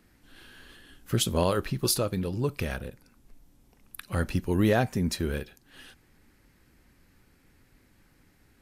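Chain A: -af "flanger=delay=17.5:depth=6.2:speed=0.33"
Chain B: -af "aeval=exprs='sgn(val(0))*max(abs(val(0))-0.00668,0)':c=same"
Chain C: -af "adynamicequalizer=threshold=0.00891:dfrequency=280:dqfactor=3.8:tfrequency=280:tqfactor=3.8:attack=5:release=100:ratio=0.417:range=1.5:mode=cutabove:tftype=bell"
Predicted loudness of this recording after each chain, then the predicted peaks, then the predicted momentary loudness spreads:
-31.0, -29.0, -28.5 LUFS; -14.0, -12.0, -12.0 dBFS; 14, 14, 14 LU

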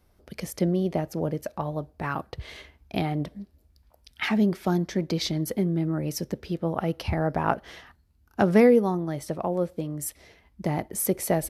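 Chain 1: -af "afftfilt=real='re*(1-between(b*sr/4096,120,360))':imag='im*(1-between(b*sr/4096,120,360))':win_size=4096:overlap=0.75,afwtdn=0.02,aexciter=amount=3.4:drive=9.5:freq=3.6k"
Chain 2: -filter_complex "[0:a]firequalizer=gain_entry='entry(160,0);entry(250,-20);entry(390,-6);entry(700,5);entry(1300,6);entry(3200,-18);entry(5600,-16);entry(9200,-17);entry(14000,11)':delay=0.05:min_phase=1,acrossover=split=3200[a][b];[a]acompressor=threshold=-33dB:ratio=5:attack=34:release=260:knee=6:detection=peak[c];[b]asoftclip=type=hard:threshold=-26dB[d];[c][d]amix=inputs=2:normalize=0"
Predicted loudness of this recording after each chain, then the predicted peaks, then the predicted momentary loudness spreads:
-25.5, -35.5 LUFS; -1.0, -13.0 dBFS; 18, 10 LU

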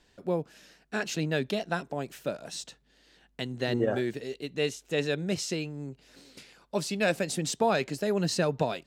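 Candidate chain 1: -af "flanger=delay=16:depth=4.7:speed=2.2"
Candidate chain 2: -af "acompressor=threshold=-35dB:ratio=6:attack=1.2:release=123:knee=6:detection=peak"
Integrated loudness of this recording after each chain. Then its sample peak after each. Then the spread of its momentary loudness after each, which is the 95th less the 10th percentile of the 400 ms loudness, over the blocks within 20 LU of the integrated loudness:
-33.5, -41.5 LUFS; -15.5, -25.5 dBFS; 12, 12 LU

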